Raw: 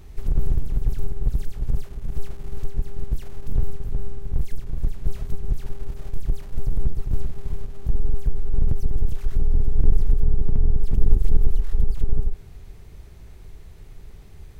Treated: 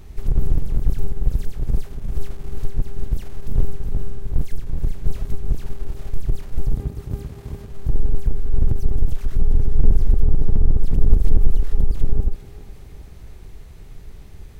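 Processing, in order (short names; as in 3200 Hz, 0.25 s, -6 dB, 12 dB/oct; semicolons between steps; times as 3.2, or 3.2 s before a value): octaver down 2 oct, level -3 dB; 6.74–7.71 HPF 59 Hz; thinning echo 0.406 s, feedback 70%, high-pass 420 Hz, level -11 dB; gain +2.5 dB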